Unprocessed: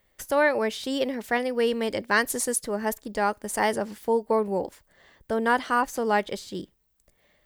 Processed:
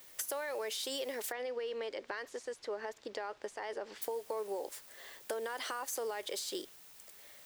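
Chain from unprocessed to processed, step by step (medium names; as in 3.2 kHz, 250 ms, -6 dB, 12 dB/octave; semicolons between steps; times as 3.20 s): Chebyshev high-pass 390 Hz, order 3; treble shelf 4.4 kHz +10 dB; peak limiter -22.5 dBFS, peak gain reduction 16.5 dB; compression, threshold -39 dBFS, peak gain reduction 12 dB; added noise white -62 dBFS; 1.32–4.02 s: distance through air 160 m; trim +3 dB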